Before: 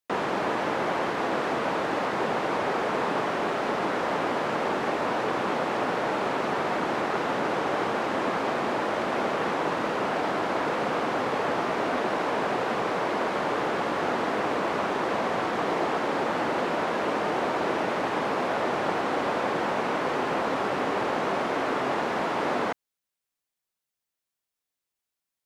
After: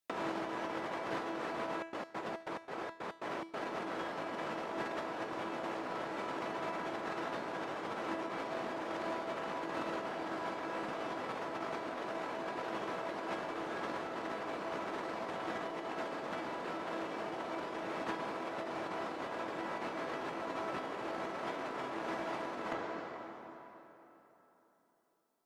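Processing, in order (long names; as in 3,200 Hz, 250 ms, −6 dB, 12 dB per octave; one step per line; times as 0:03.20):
hum removal 116.5 Hz, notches 29
convolution reverb RT60 3.6 s, pre-delay 103 ms, DRR 12 dB
compressor whose output falls as the input rises −31 dBFS, ratio −0.5
0:01.62–0:03.64: gate pattern "xx.x.xx.x." 140 BPM −24 dB
tuned comb filter 330 Hz, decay 0.49 s, harmonics all, mix 80%
level +5 dB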